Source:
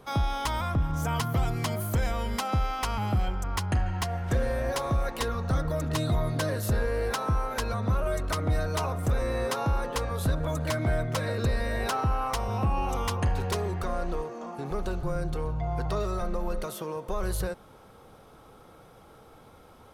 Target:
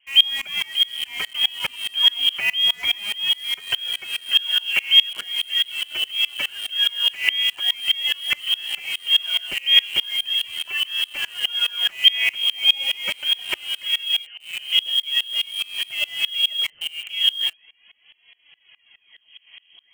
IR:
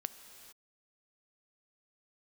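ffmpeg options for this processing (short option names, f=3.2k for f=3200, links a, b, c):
-filter_complex "[0:a]aphaser=in_gain=1:out_gain=1:delay=3.5:decay=0.61:speed=0.41:type=sinusoidal,lowpass=f=2.8k:t=q:w=0.5098,lowpass=f=2.8k:t=q:w=0.6013,lowpass=f=2.8k:t=q:w=0.9,lowpass=f=2.8k:t=q:w=2.563,afreqshift=-3300,equalizer=f=1.2k:w=2.2:g=-5,asplit=2[a][b];[b]acrusher=bits=4:mix=0:aa=0.000001,volume=-5dB[c];[a][c]amix=inputs=2:normalize=0,aeval=exprs='val(0)*pow(10,-26*if(lt(mod(-4.8*n/s,1),2*abs(-4.8)/1000),1-mod(-4.8*n/s,1)/(2*abs(-4.8)/1000),(mod(-4.8*n/s,1)-2*abs(-4.8)/1000)/(1-2*abs(-4.8)/1000))/20)':c=same,volume=5dB"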